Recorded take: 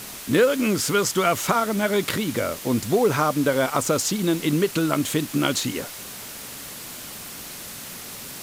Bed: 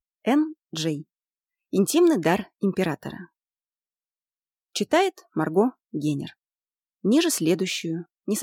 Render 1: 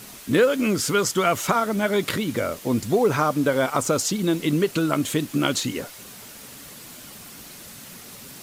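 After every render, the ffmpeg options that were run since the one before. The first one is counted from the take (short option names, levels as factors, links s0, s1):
-af "afftdn=nr=6:nf=-37"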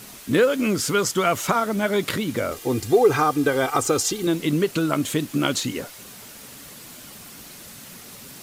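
-filter_complex "[0:a]asettb=1/sr,asplit=3[s0][s1][s2];[s0]atrim=end=2.514[s3];[s1]atrim=start=2.51:end=4.27,asetpts=PTS-STARTPTS,afade=t=in:d=0.004:c=qsin,afade=t=out:st=1.756:d=0.004:c=qsin,aecho=1:1:2.5:0.7,atrim=end_sample=77616[s4];[s2]atrim=start=4.266[s5];[s3][s4]acrossfade=d=0.004:c1=hsin:c2=qsin[s6];[s6][s5]acrossfade=d=0.004:c1=qsin:c2=hsin"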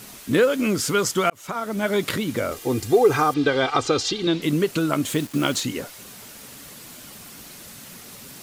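-filter_complex "[0:a]asettb=1/sr,asplit=3[s0][s1][s2];[s0]atrim=end=3.344[s3];[s1]atrim=start=3.34:end=4.42,asetpts=PTS-STARTPTS,afade=t=in:d=0.004:c=qsin,afade=t=out:st=1.076:d=0.004:c=qsin,lowpass=f=4000:t=q:w=2.3[s4];[s2]atrim=start=4.416[s5];[s3][s4]acrossfade=d=0.004:c1=hsin:c2=qsin[s6];[s6][s5]acrossfade=d=0.004:c1=qsin:c2=hsin,asettb=1/sr,asplit=3[s7][s8][s9];[s7]atrim=end=5.064[s10];[s8]atrim=start=5.06:end=5.61,asetpts=PTS-STARTPTS,afade=t=in:d=0.004:c=qsin,afade=t=out:st=0.546:d=0.004:c=qsin,acrusher=bits=5:mix=0:aa=0.5[s11];[s9]atrim=start=5.606[s12];[s10][s11]acrossfade=d=0.004:c1=hsin:c2=qsin[s13];[s13][s12]acrossfade=d=0.004:c1=qsin:c2=hsin,asplit=2[s14][s15];[s14]atrim=end=1.3,asetpts=PTS-STARTPTS,afade=t=out:st=1.296:d=0.004:c=hsin[s16];[s15]atrim=start=1.3,asetpts=PTS-STARTPTS,afade=t=in:d=0.6[s17];[s16][s17]concat=n=2:v=0:a=1"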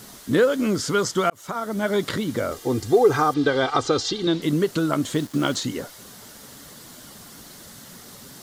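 -filter_complex "[0:a]equalizer=f=2500:t=o:w=0.37:g=-9.5,acrossover=split=7500[s0][s1];[s1]acompressor=threshold=0.00562:ratio=4:attack=1:release=60[s2];[s0][s2]amix=inputs=2:normalize=0"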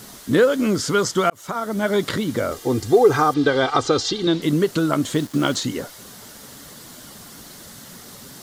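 -af "volume=1.33"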